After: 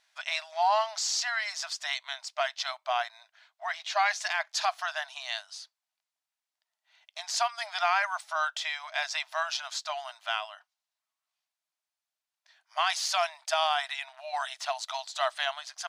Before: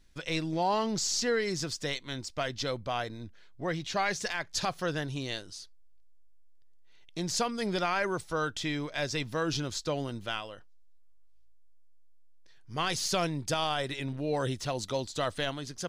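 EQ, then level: brick-wall FIR high-pass 610 Hz; treble shelf 6.9 kHz -10 dB; +5.0 dB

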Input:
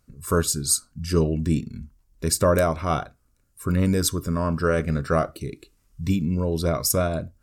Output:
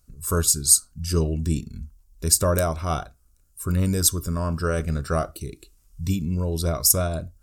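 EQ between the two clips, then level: ten-band graphic EQ 125 Hz -8 dB, 250 Hz -9 dB, 500 Hz -8 dB, 1 kHz -6 dB, 2 kHz -11 dB, 4 kHz -4 dB; +7.0 dB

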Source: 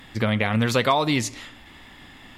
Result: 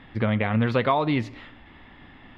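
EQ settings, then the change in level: distance through air 390 m; 0.0 dB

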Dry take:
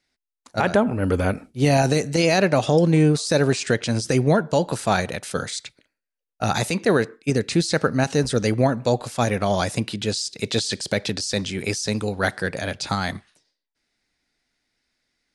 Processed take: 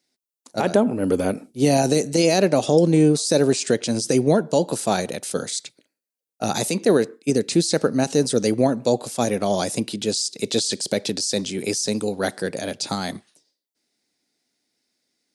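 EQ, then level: high-pass 260 Hz 12 dB/octave; peaking EQ 1.6 kHz -14 dB 2.7 oct; +7.5 dB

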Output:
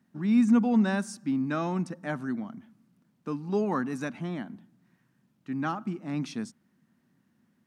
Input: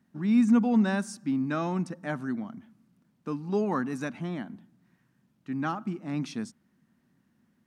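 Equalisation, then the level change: high-pass 79 Hz; 0.0 dB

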